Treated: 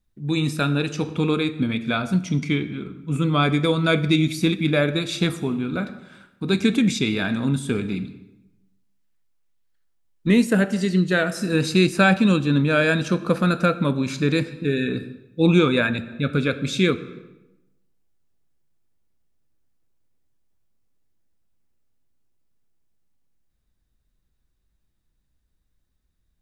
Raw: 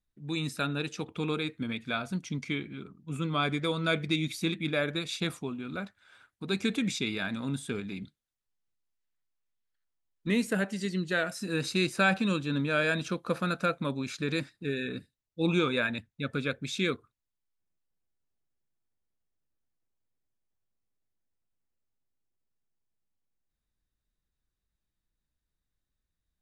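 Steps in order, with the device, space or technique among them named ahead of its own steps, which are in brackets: low shelf 440 Hz +6 dB; compressed reverb return (on a send at -8.5 dB: reverb RT60 0.90 s, pre-delay 15 ms + compressor, threshold -27 dBFS, peak gain reduction 10 dB); on the sum: gain +6.5 dB

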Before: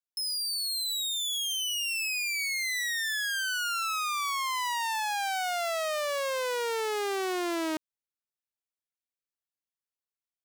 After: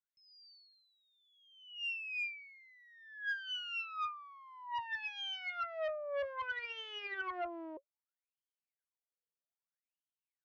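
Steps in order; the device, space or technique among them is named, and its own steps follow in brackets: wah-wah guitar rig (wah 0.62 Hz 480–3200 Hz, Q 20; tube stage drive 47 dB, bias 0.75; speaker cabinet 77–3900 Hz, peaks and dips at 380 Hz +8 dB, 1500 Hz +3 dB, 3900 Hz -8 dB); gain +12.5 dB

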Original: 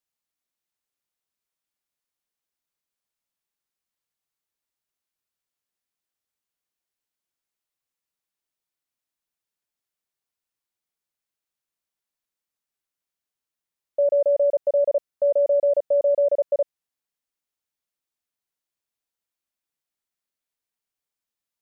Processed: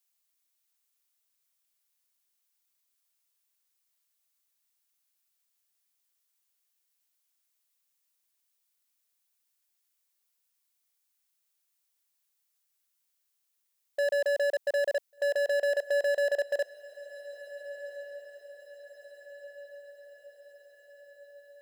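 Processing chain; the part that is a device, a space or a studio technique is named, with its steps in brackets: clipper into limiter (hard clip -20 dBFS, distortion -14 dB; limiter -22.5 dBFS, peak gain reduction 2.5 dB); HPF 260 Hz 12 dB/oct; tilt +3 dB/oct; diffused feedback echo 1.55 s, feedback 54%, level -16 dB

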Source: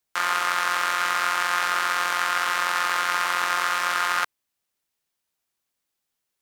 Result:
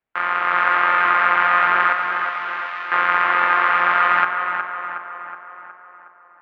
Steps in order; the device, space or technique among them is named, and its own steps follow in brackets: 1.93–2.92 differentiator; tape echo 0.367 s, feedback 61%, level -5 dB, low-pass 2500 Hz; action camera in a waterproof case (LPF 2400 Hz 24 dB/oct; AGC gain up to 5.5 dB; gain +2.5 dB; AAC 64 kbps 16000 Hz)

